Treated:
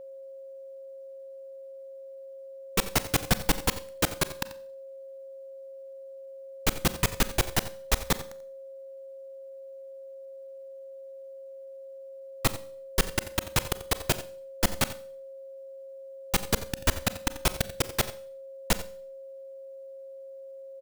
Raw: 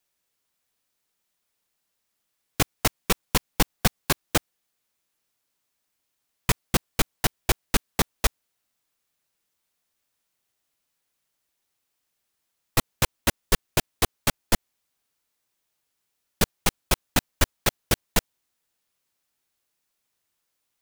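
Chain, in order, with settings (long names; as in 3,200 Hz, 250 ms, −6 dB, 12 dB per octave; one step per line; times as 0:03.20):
slices reordered back to front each 108 ms, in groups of 6
on a send: single-tap delay 88 ms −16 dB
on the sum: four-comb reverb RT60 0.49 s, combs from 30 ms, DRR 14.5 dB
steady tone 540 Hz −38 dBFS
level −3 dB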